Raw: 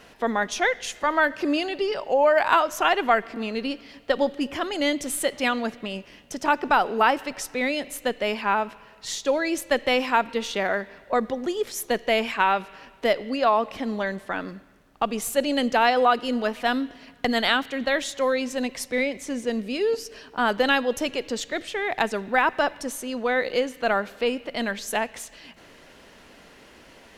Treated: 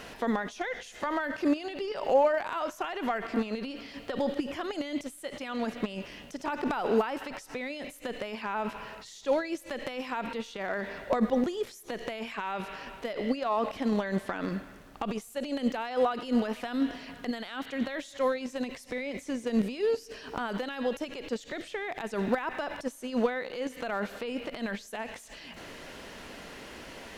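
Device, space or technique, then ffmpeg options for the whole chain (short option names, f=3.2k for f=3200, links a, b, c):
de-esser from a sidechain: -filter_complex "[0:a]asplit=2[a][b];[b]highpass=4.3k,apad=whole_len=1198254[c];[a][c]sidechaincompress=threshold=-58dB:ratio=5:attack=0.67:release=33,volume=7.5dB"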